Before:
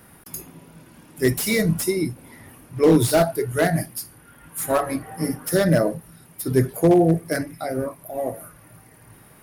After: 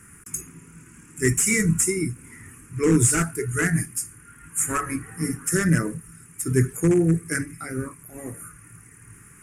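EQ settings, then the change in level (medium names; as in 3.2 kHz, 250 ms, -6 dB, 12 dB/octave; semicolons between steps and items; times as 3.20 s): FFT filter 100 Hz 0 dB, 430 Hz -7 dB, 630 Hz -27 dB, 1.3 kHz 0 dB, 2.5 kHz -1 dB, 4 kHz -22 dB, 7.5 kHz +14 dB, 15 kHz -17 dB; +2.5 dB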